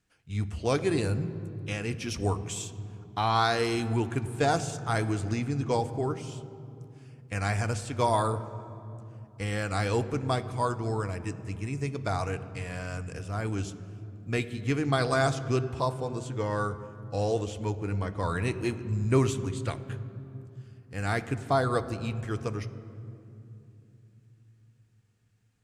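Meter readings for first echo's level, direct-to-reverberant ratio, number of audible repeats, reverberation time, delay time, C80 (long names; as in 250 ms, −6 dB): no echo audible, 11.0 dB, no echo audible, 2.9 s, no echo audible, 14.5 dB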